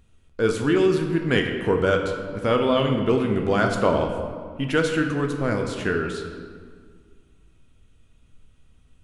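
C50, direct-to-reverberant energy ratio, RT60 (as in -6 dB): 5.5 dB, 3.0 dB, 1.8 s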